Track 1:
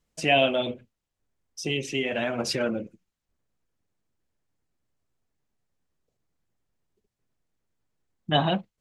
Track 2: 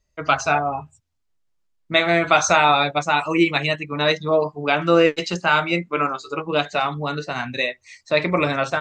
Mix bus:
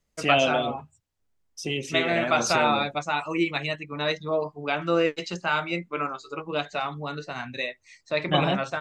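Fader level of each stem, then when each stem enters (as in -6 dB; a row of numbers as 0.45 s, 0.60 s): -1.0 dB, -7.5 dB; 0.00 s, 0.00 s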